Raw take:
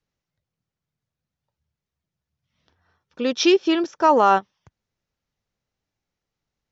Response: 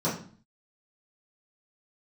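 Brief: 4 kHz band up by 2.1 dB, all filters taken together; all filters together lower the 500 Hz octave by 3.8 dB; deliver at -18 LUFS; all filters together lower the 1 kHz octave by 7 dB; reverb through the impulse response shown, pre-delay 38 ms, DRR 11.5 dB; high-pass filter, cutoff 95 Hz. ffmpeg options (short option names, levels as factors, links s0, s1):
-filter_complex "[0:a]highpass=95,equalizer=f=500:t=o:g=-3.5,equalizer=f=1000:t=o:g=-8,equalizer=f=4000:t=o:g=3.5,asplit=2[s0][s1];[1:a]atrim=start_sample=2205,adelay=38[s2];[s1][s2]afir=irnorm=-1:irlink=0,volume=0.075[s3];[s0][s3]amix=inputs=2:normalize=0,volume=1.5"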